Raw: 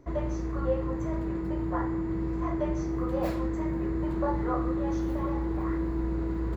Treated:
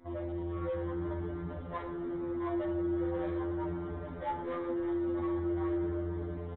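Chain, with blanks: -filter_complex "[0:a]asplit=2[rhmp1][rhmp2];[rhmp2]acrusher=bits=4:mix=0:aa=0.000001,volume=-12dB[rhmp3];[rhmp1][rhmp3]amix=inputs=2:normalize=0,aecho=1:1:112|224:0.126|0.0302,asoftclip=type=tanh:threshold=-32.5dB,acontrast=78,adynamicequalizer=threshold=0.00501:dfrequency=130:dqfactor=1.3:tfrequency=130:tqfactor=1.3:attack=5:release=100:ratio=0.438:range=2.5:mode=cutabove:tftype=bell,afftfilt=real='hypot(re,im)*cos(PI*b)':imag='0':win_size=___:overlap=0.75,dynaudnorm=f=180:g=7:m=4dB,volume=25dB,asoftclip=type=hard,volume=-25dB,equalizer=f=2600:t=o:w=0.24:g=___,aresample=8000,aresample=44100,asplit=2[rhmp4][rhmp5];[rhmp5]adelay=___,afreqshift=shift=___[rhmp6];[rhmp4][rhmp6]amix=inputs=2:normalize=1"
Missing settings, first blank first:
2048, -11, 5.6, -0.4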